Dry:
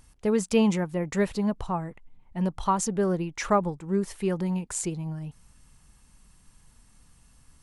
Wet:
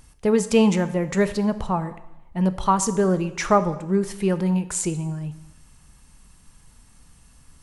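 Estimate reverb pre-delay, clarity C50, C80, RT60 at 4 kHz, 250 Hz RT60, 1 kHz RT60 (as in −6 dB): 6 ms, 14.5 dB, 16.5 dB, 0.90 s, 0.90 s, 0.90 s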